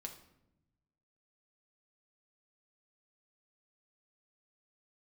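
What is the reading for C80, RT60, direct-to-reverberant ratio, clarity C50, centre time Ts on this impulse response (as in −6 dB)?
13.0 dB, 0.85 s, 2.5 dB, 9.5 dB, 16 ms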